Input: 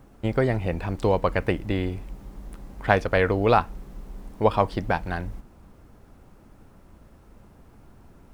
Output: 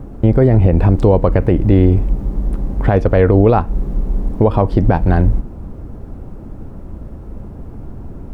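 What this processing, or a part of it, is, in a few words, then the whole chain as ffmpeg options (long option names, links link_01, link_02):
mastering chain: -af "equalizer=frequency=180:width_type=o:width=0.77:gain=-2,acompressor=threshold=-24dB:ratio=3,tiltshelf=frequency=910:gain=10,alimiter=level_in=13dB:limit=-1dB:release=50:level=0:latency=1,volume=-1dB"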